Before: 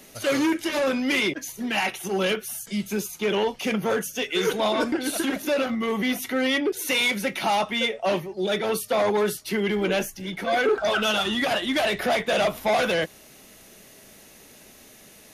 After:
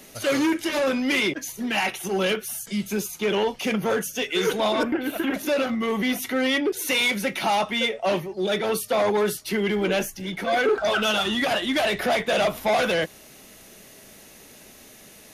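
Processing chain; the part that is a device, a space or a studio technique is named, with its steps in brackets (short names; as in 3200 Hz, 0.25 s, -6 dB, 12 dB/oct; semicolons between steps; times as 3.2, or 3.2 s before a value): parallel distortion (in parallel at -13 dB: hard clip -31 dBFS, distortion -5 dB); 4.83–5.34 on the sum: band shelf 6400 Hz -16 dB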